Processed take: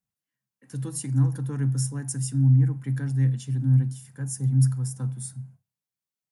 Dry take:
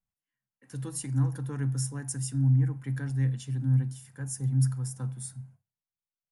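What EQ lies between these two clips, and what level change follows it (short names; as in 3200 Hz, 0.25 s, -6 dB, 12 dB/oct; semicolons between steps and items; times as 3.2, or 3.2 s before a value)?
HPF 140 Hz; tone controls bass +2 dB, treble +3 dB; low shelf 240 Hz +8.5 dB; 0.0 dB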